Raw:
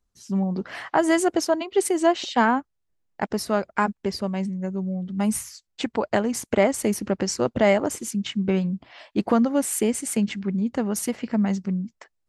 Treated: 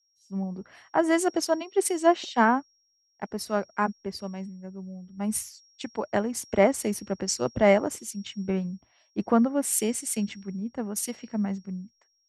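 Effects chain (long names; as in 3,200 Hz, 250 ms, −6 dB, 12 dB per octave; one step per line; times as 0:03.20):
steady tone 5,600 Hz −46 dBFS
multiband upward and downward expander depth 100%
level −5 dB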